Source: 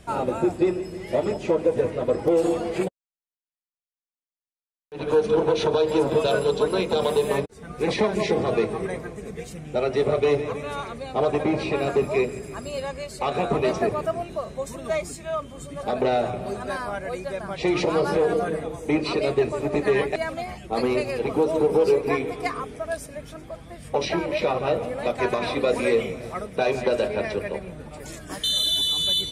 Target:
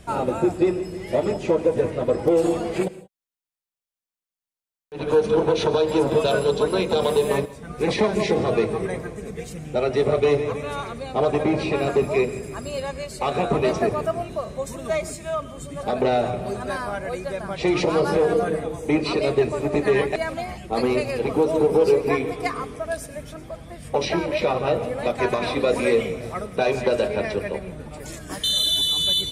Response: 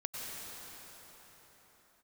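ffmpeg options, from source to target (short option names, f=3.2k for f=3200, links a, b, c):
-filter_complex "[0:a]asplit=2[a][b];[b]lowshelf=f=330:g=10.5[c];[1:a]atrim=start_sample=2205,afade=t=out:st=0.24:d=0.01,atrim=end_sample=11025,highshelf=f=5k:g=10[d];[c][d]afir=irnorm=-1:irlink=0,volume=-14dB[e];[a][e]amix=inputs=2:normalize=0"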